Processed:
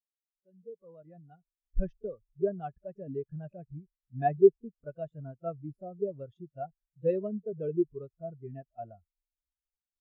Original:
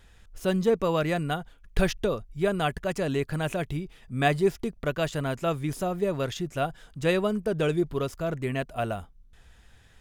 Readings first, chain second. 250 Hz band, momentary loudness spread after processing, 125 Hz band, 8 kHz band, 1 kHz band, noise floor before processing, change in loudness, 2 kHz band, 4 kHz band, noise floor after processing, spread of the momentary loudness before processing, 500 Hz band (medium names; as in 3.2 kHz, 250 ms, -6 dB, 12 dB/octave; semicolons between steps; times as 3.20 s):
-8.0 dB, 16 LU, -11.5 dB, under -35 dB, -7.0 dB, -56 dBFS, -4.5 dB, -21.5 dB, under -35 dB, under -85 dBFS, 7 LU, -4.0 dB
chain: fade-in on the opening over 2.26 s; pre-echo 30 ms -19 dB; spectral contrast expander 2.5:1